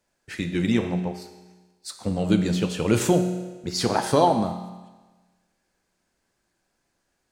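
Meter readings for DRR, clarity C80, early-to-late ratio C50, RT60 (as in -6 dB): 6.0 dB, 10.5 dB, 8.5 dB, 1.3 s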